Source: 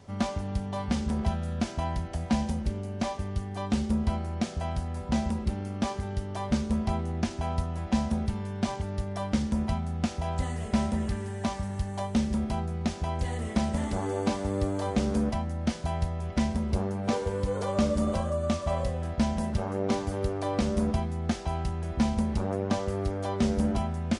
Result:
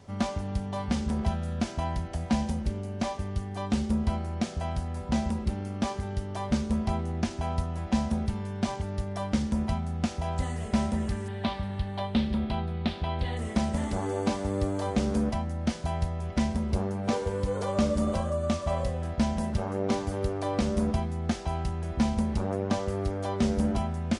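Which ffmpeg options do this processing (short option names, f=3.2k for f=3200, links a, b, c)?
-filter_complex "[0:a]asettb=1/sr,asplit=3[a][b][c];[a]atrim=end=11.284[d];[b]atrim=start=11.28:end=13.37,asetpts=PTS-STARTPTS,afade=t=in:d=0.004:c=qsin,afade=t=out:st=2.086:d=0.004:c=qsin,highshelf=f=5k:t=q:w=3:g=-10.5[e];[c]atrim=start=13.366[f];[d][e]acrossfade=d=0.004:c1=hsin:c2=qsin[g];[g][f]acrossfade=d=0.004:c1=qsin:c2=hsin"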